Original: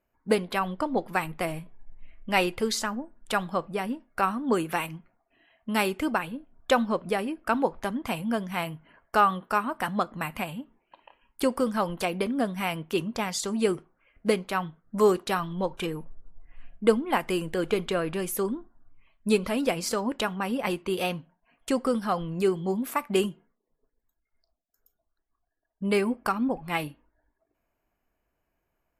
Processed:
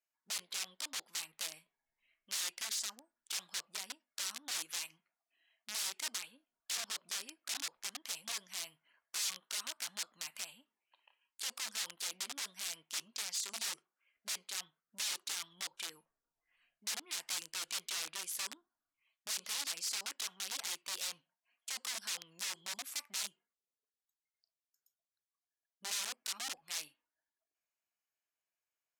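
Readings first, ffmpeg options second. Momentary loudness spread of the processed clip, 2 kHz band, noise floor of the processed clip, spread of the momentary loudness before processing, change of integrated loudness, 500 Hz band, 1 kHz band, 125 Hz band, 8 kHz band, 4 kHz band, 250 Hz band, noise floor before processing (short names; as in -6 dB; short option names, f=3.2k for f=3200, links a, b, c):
7 LU, -12.5 dB, under -85 dBFS, 9 LU, -11.5 dB, -33.5 dB, -23.5 dB, under -35 dB, +2.5 dB, -1.5 dB, -36.0 dB, -79 dBFS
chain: -af "aeval=exprs='(mod(15.8*val(0)+1,2)-1)/15.8':c=same,bandpass=f=6.1k:t=q:w=0.96:csg=0,volume=-3dB"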